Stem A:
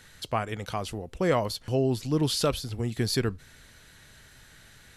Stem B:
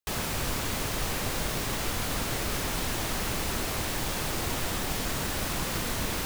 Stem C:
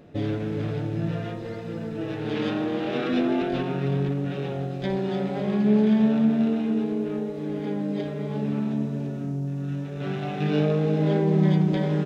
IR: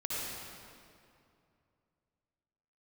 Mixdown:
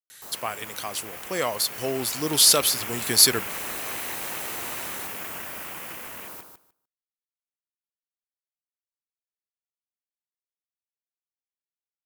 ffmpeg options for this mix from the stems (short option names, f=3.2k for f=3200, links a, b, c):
-filter_complex "[0:a]adelay=100,volume=-0.5dB[a];[1:a]afwtdn=0.0178,equalizer=f=12k:t=o:w=0.26:g=2.5,adelay=150,volume=-8dB,asplit=2[b][c];[c]volume=-6.5dB,aecho=0:1:150|300|450:1|0.17|0.0289[d];[a][b][d]amix=inputs=3:normalize=0,dynaudnorm=f=480:g=9:m=8dB,highpass=f=590:p=1,aemphasis=mode=production:type=75fm"